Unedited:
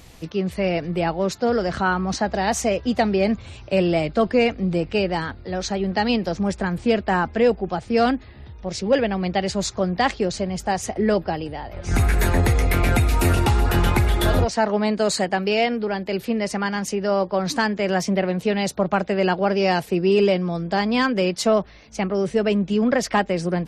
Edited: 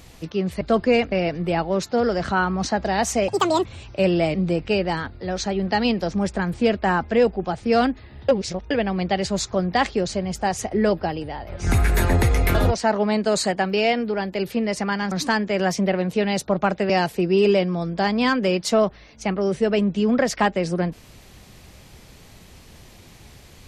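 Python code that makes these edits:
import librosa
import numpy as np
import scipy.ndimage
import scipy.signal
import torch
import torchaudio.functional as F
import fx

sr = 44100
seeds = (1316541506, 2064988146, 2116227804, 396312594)

y = fx.edit(x, sr, fx.speed_span(start_s=2.77, length_s=0.62, speed=1.65),
    fx.move(start_s=4.08, length_s=0.51, to_s=0.61),
    fx.reverse_span(start_s=8.53, length_s=0.42),
    fx.cut(start_s=12.79, length_s=1.49),
    fx.cut(start_s=16.85, length_s=0.56),
    fx.cut(start_s=19.19, length_s=0.44), tone=tone)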